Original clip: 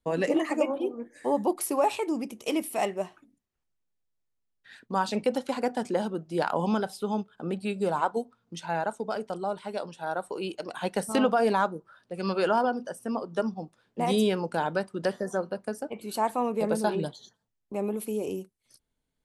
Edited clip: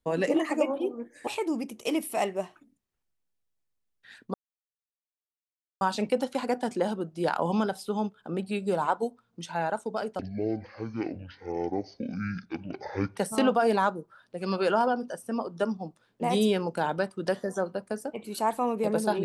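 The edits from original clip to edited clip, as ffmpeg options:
-filter_complex "[0:a]asplit=5[s0][s1][s2][s3][s4];[s0]atrim=end=1.272[s5];[s1]atrim=start=1.878:end=4.95,asetpts=PTS-STARTPTS,afade=t=out:st=3.068:d=0.004:c=hsin,apad=pad_dur=1.47[s6];[s2]atrim=start=4.95:end=9.334,asetpts=PTS-STARTPTS,afade=t=in:d=0.004:c=hsin[s7];[s3]atrim=start=9.33:end=10.94,asetpts=PTS-STARTPTS,asetrate=23814,aresample=44100,atrim=end_sample=131483,asetpts=PTS-STARTPTS[s8];[s4]atrim=start=10.936[s9];[s6][s7]concat=n=2:v=0:a=1[s10];[s5][s10]acrossfade=d=0.004:c1=hsin:c2=hsin[s11];[s11][s8]acrossfade=d=0.004:c1=hsin:c2=hsin[s12];[s12][s9]acrossfade=d=0.004:c1=hsin:c2=hsin"

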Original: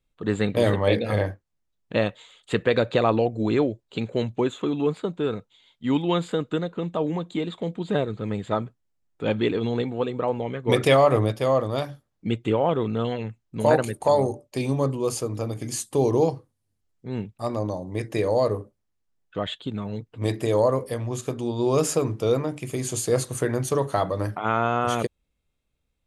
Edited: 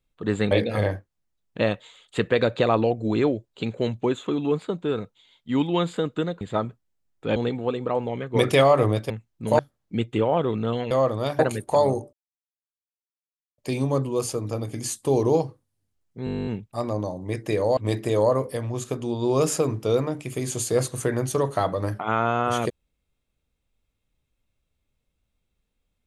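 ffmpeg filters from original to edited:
-filter_complex "[0:a]asplit=21[s0][s1][s2][s3][s4][s5][s6][s7][s8][s9][s10][s11][s12][s13][s14][s15][s16][s17][s18][s19][s20];[s0]atrim=end=0.512[s21];[s1]atrim=start=0.858:end=6.762[s22];[s2]atrim=start=8.378:end=9.332[s23];[s3]atrim=start=9.688:end=11.432[s24];[s4]atrim=start=13.228:end=13.722[s25];[s5]atrim=start=11.908:end=13.232[s26];[s6]atrim=start=11.428:end=11.912[s27];[s7]atrim=start=13.718:end=14.46,asetpts=PTS-STARTPTS,afade=t=out:st=0.738:d=0.004:c=hsin,apad=pad_dur=1.45[s28];[s8]atrim=start=14.46:end=17.152,asetpts=PTS-STARTPTS,afade=t=in:d=0.004:c=hsin[s29];[s9]atrim=start=17.128:end=17.152[s30];[s10]atrim=start=17.128:end=17.152[s31];[s11]atrim=start=17.128:end=17.152[s32];[s12]atrim=start=17.128:end=17.152[s33];[s13]atrim=start=17.128:end=17.152[s34];[s14]atrim=start=17.128:end=17.152[s35];[s15]atrim=start=17.128:end=17.152[s36];[s16]atrim=start=17.128:end=17.152[s37];[s17]atrim=start=17.128:end=17.152[s38];[s18]atrim=start=17.128:end=17.152[s39];[s19]atrim=start=17.128:end=18.432[s40];[s20]atrim=start=20.138[s41];[s21][s22]acrossfade=d=0.004:c1=hsin:c2=hsin[s42];[s42][s23]acrossfade=d=0.004:c1=hsin:c2=hsin[s43];[s43][s24]acrossfade=d=0.004:c1=hsin:c2=hsin[s44];[s44][s25]acrossfade=d=0.004:c1=hsin:c2=hsin[s45];[s45][s26]acrossfade=d=0.004:c1=hsin:c2=hsin[s46];[s46][s27]acrossfade=d=0.004:c1=hsin:c2=hsin[s47];[s28][s29]concat=n=2:v=0:a=1[s48];[s47][s48]acrossfade=d=0.004:c1=hsin:c2=hsin[s49];[s49][s30]acrossfade=d=0.004:c1=hsin:c2=hsin[s50];[s50][s31]acrossfade=d=0.004:c1=hsin:c2=hsin[s51];[s51][s32]acrossfade=d=0.004:c1=hsin:c2=hsin[s52];[s52][s33]acrossfade=d=0.004:c1=hsin:c2=hsin[s53];[s53][s34]acrossfade=d=0.004:c1=hsin:c2=hsin[s54];[s54][s35]acrossfade=d=0.004:c1=hsin:c2=hsin[s55];[s55][s36]acrossfade=d=0.004:c1=hsin:c2=hsin[s56];[s56][s37]acrossfade=d=0.004:c1=hsin:c2=hsin[s57];[s57][s38]acrossfade=d=0.004:c1=hsin:c2=hsin[s58];[s58][s39]acrossfade=d=0.004:c1=hsin:c2=hsin[s59];[s59][s40]acrossfade=d=0.004:c1=hsin:c2=hsin[s60];[s60][s41]acrossfade=d=0.004:c1=hsin:c2=hsin"

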